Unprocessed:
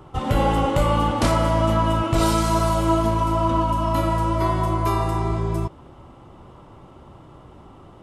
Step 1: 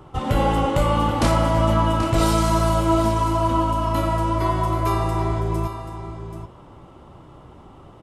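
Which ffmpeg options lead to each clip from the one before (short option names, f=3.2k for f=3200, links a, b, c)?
-af "aecho=1:1:783:0.299"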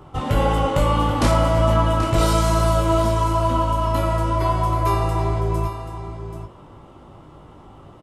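-filter_complex "[0:a]asplit=2[a][b];[b]adelay=20,volume=-7dB[c];[a][c]amix=inputs=2:normalize=0"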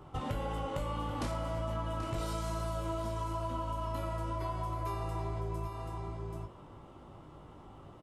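-af "acompressor=threshold=-25dB:ratio=6,volume=-8dB"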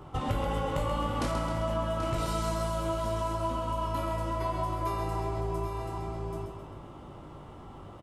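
-af "aecho=1:1:132|264|396|528|660|792:0.447|0.228|0.116|0.0593|0.0302|0.0154,volume=5dB"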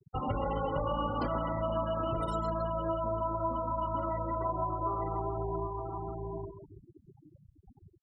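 -af "lowshelf=f=180:g=-5.5,afftfilt=real='re*gte(hypot(re,im),0.0251)':imag='im*gte(hypot(re,im),0.0251)':win_size=1024:overlap=0.75" -ar 48000 -c:a libopus -b:a 96k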